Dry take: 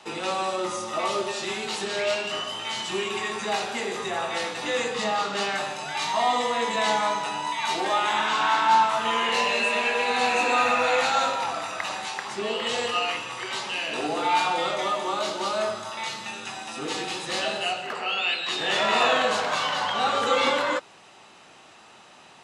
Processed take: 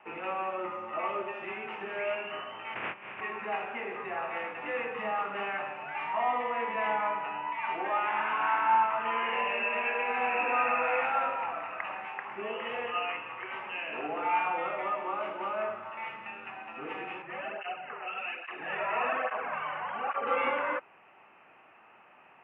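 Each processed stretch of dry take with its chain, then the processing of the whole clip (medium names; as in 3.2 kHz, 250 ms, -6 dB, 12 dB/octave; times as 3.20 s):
2.74–3.20 s: spectral peaks clipped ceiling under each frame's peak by 24 dB + steep low-pass 3.9 kHz + compressor with a negative ratio -36 dBFS, ratio -0.5
17.22–20.27 s: low-pass 3 kHz 24 dB/octave + flutter echo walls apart 7.7 m, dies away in 0.24 s + cancelling through-zero flanger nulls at 1.2 Hz, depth 4.7 ms
whole clip: elliptic low-pass 2.6 kHz, stop band 40 dB; bass shelf 320 Hz -8 dB; trim -4.5 dB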